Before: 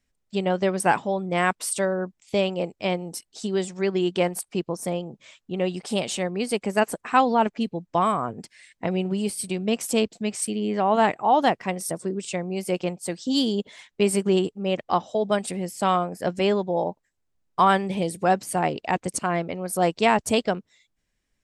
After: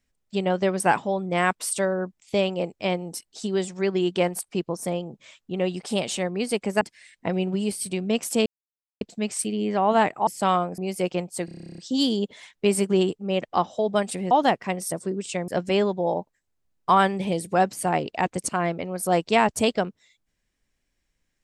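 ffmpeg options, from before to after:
-filter_complex "[0:a]asplit=18[s0][s1][s2][s3][s4][s5][s6][s7][s8][s9][s10][s11][s12][s13][s14][s15][s16][s17];[s0]atrim=end=6.812[s18];[s1]atrim=start=8.388:end=10.04,asetpts=PTS-STARTPTS,afade=t=out:st=1.648:d=0.004:c=hsin,apad=pad_dur=0.55[s19];[s2]atrim=start=10.04:end=11.302,asetpts=PTS-STARTPTS,afade=t=in:d=0.004:c=hsin[s20];[s3]atrim=start=15.668:end=16.182[s21];[s4]atrim=start=12.468:end=13.172[s22];[s5]atrim=start=13.138:end=13.172[s23];[s6]atrim=start=13.138:end=13.172[s24];[s7]atrim=start=13.138:end=13.172[s25];[s8]atrim=start=13.138:end=13.172[s26];[s9]atrim=start=13.138:end=13.172[s27];[s10]atrim=start=13.138:end=13.172[s28];[s11]atrim=start=13.138:end=13.172[s29];[s12]atrim=start=13.138:end=13.172[s30];[s13]atrim=start=13.138:end=13.172[s31];[s14]atrim=start=13.138:end=13.172[s32];[s15]atrim=start=13.138:end=15.672[s33];[s16]atrim=start=11.298:end=12.472[s34];[s17]atrim=start=16.178[s35];[s19][s20]concat=n=2:v=0:a=1[s36];[s18][s36]acrossfade=d=0.004:c1=hsin:c2=hsin[s37];[s37][s21]acrossfade=d=0.004:c1=hsin:c2=hsin[s38];[s38][s22]acrossfade=d=0.004:c1=hsin:c2=hsin[s39];[s39][s23]acrossfade=d=0.004:c1=hsin:c2=hsin[s40];[s40][s24]acrossfade=d=0.004:c1=hsin:c2=hsin[s41];[s41][s25]acrossfade=d=0.004:c1=hsin:c2=hsin[s42];[s42][s26]acrossfade=d=0.004:c1=hsin:c2=hsin[s43];[s43][s27]acrossfade=d=0.004:c1=hsin:c2=hsin[s44];[s44][s28]acrossfade=d=0.004:c1=hsin:c2=hsin[s45];[s45][s29]acrossfade=d=0.004:c1=hsin:c2=hsin[s46];[s46][s30]acrossfade=d=0.004:c1=hsin:c2=hsin[s47];[s47][s31]acrossfade=d=0.004:c1=hsin:c2=hsin[s48];[s48][s32]acrossfade=d=0.004:c1=hsin:c2=hsin[s49];[s49][s33]acrossfade=d=0.004:c1=hsin:c2=hsin[s50];[s50][s34]acrossfade=d=0.004:c1=hsin:c2=hsin[s51];[s51][s35]acrossfade=d=0.004:c1=hsin:c2=hsin"

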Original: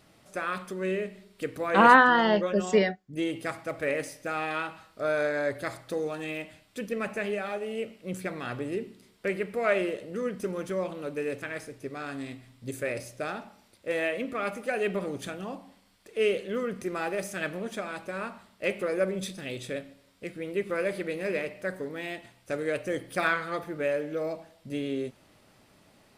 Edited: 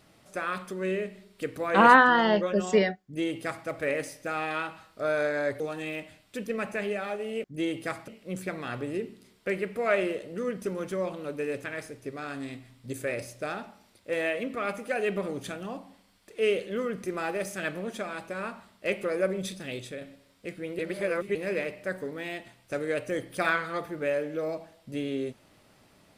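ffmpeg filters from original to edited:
-filter_complex "[0:a]asplit=7[s0][s1][s2][s3][s4][s5][s6];[s0]atrim=end=5.602[s7];[s1]atrim=start=6.018:end=7.862[s8];[s2]atrim=start=3.028:end=3.672[s9];[s3]atrim=start=7.858:end=19.79,asetpts=PTS-STARTPTS,afade=t=out:st=11.682:d=0.25:silence=0.446684[s10];[s4]atrim=start=19.79:end=20.572,asetpts=PTS-STARTPTS,afade=t=in:d=0.004:c=hsin:silence=0.446684[s11];[s5]atrim=start=20.568:end=21.132,asetpts=PTS-STARTPTS,areverse[s12];[s6]atrim=start=21.128[s13];[s7][s8]acrossfade=d=0.004:c1=hsin:c2=hsin[s14];[s14][s9]acrossfade=d=0.004:c1=hsin:c2=hsin[s15];[s10][s11]concat=n=2:v=0:a=1[s16];[s15][s16]acrossfade=d=0.004:c1=hsin:c2=hsin[s17];[s17][s12]acrossfade=d=0.004:c1=hsin:c2=hsin[s18];[s18][s13]acrossfade=d=0.004:c1=hsin:c2=hsin"

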